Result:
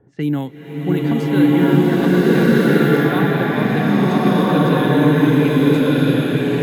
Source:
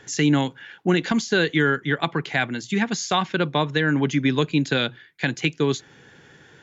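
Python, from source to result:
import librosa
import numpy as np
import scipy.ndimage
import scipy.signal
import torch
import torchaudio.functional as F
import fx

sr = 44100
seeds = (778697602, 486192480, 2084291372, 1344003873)

y = np.repeat(x[::3], 3)[:len(x)]
y = fx.env_lowpass(y, sr, base_hz=730.0, full_db=-16.0)
y = fx.tilt_shelf(y, sr, db=6.0, hz=970.0)
y = fx.rev_bloom(y, sr, seeds[0], attack_ms=1410, drr_db=-10.5)
y = y * librosa.db_to_amplitude(-6.0)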